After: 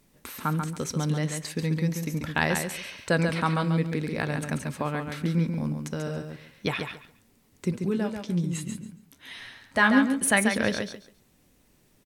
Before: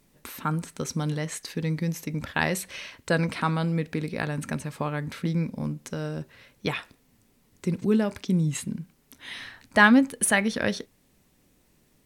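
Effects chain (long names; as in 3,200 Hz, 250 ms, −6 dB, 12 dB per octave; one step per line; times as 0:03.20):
0:07.71–0:10.25: flanger 1.1 Hz, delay 7.5 ms, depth 7.8 ms, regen +46%
repeating echo 139 ms, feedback 20%, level −6 dB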